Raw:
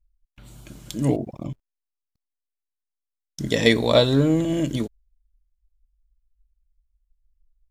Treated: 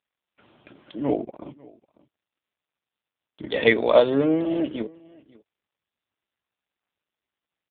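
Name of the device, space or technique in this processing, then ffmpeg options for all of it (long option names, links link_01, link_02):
satellite phone: -af "highpass=360,lowpass=3400,aecho=1:1:547:0.0708,volume=3.5dB" -ar 8000 -c:a libopencore_amrnb -b:a 5900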